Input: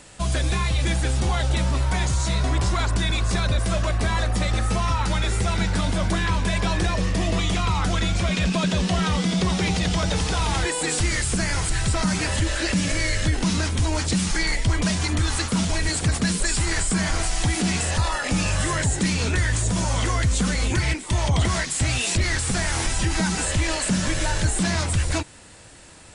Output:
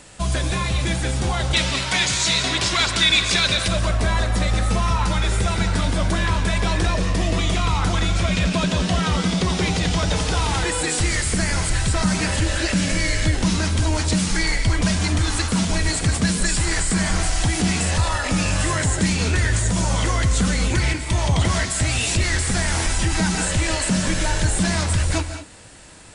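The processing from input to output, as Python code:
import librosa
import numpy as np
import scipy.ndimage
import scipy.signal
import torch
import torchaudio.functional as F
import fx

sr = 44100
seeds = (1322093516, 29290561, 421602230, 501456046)

y = fx.weighting(x, sr, curve='D', at=(1.53, 3.68))
y = fx.rev_gated(y, sr, seeds[0], gate_ms=230, shape='rising', drr_db=8.5)
y = y * 10.0 ** (1.5 / 20.0)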